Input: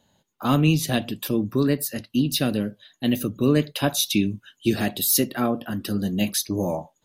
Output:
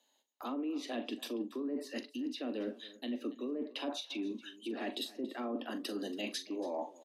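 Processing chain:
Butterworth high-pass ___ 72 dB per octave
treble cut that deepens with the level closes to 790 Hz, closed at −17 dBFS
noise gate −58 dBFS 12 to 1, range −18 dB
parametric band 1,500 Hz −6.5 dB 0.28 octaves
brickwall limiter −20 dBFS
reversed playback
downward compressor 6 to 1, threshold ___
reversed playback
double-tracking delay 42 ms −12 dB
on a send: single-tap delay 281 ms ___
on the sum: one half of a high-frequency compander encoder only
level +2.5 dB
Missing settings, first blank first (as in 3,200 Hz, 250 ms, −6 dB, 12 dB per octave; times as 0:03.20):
240 Hz, −39 dBFS, −19.5 dB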